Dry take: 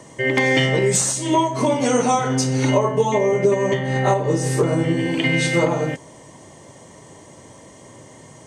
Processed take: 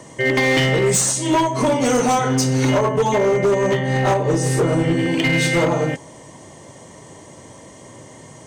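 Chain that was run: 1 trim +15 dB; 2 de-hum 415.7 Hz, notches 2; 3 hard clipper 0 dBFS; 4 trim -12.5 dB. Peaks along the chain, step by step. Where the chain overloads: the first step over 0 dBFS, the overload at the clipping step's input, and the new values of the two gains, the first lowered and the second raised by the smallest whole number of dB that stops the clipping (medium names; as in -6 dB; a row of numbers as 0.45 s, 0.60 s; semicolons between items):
+9.5 dBFS, +9.5 dBFS, 0.0 dBFS, -12.5 dBFS; step 1, 9.5 dB; step 1 +5 dB, step 4 -2.5 dB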